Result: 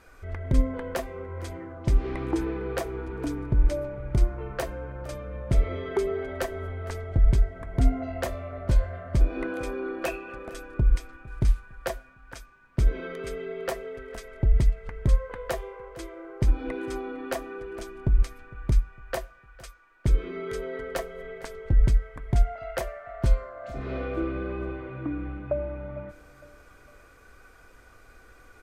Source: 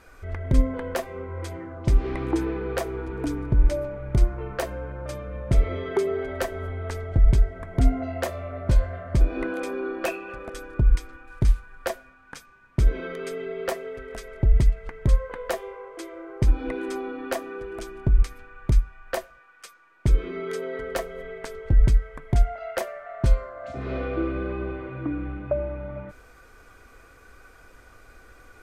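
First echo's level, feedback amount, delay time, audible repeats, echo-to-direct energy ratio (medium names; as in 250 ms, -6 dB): -21.0 dB, 47%, 456 ms, 3, -20.0 dB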